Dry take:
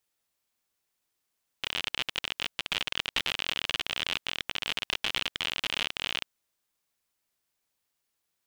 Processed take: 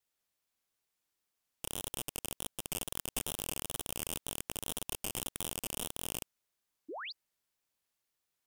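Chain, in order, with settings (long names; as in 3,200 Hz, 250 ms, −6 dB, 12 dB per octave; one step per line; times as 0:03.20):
stylus tracing distortion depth 0.4 ms
in parallel at +1 dB: output level in coarse steps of 14 dB
on the sum: sound drawn into the spectrogram rise, 0:06.88–0:07.13, 270–5,000 Hz −33 dBFS
tape wow and flutter 98 cents
level −9 dB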